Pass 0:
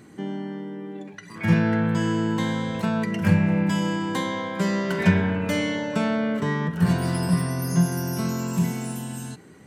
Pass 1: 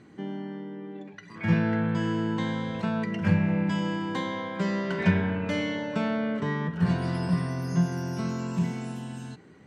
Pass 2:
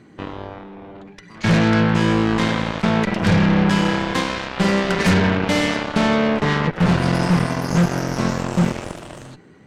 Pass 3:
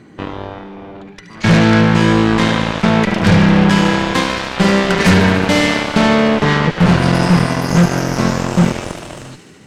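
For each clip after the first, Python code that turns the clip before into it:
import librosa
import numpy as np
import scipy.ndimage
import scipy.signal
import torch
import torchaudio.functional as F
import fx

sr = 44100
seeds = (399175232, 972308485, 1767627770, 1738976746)

y1 = scipy.signal.sosfilt(scipy.signal.butter(2, 4800.0, 'lowpass', fs=sr, output='sos'), x)
y1 = y1 * 10.0 ** (-4.0 / 20.0)
y2 = fx.fold_sine(y1, sr, drive_db=6, ceiling_db=-10.0)
y2 = fx.cheby_harmonics(y2, sr, harmonics=(4, 6, 7, 8), levels_db=(-16, -20, -13, -23), full_scale_db=-9.5)
y3 = fx.echo_wet_highpass(y2, sr, ms=73, feedback_pct=81, hz=2200.0, wet_db=-10.5)
y3 = y3 * 10.0 ** (5.5 / 20.0)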